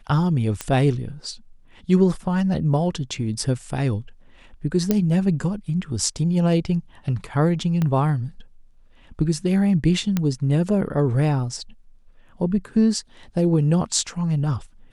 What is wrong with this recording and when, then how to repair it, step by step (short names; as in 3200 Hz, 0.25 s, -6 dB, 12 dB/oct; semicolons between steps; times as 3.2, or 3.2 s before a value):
0.61 pop -11 dBFS
4.91 pop -6 dBFS
7.82 pop -12 dBFS
10.17 pop -9 dBFS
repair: de-click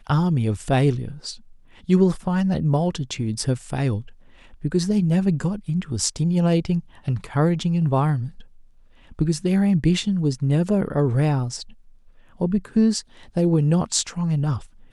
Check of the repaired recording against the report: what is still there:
7.82 pop
10.17 pop